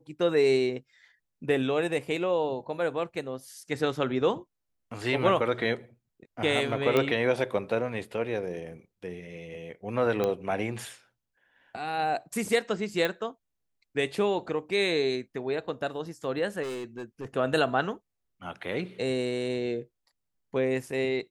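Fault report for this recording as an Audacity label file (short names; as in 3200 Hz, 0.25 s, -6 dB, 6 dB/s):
6.970000	6.970000	pop -12 dBFS
10.240000	10.240000	pop -15 dBFS
13.050000	13.050000	pop -15 dBFS
16.620000	17.260000	clipped -32 dBFS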